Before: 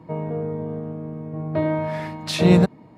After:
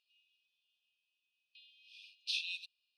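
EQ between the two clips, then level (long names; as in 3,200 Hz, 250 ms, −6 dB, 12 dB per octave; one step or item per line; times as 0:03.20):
Savitzky-Golay smoothing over 15 samples
linear-phase brick-wall high-pass 2,400 Hz
−7.0 dB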